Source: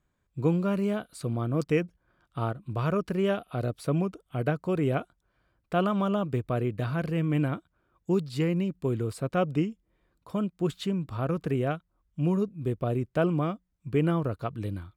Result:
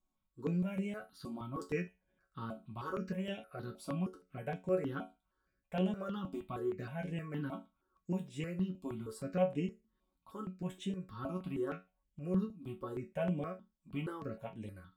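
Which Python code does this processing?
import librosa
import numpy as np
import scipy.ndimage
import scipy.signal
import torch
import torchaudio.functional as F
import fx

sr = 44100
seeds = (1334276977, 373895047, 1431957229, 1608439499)

y = fx.resonator_bank(x, sr, root=54, chord='minor', decay_s=0.24)
y = fx.phaser_held(y, sr, hz=6.4, low_hz=470.0, high_hz=4500.0)
y = y * 10.0 ** (8.5 / 20.0)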